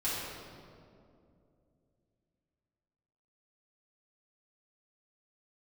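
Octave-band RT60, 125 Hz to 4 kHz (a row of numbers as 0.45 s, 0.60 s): 3.5 s, 3.3 s, 2.9 s, 2.2 s, 1.6 s, 1.4 s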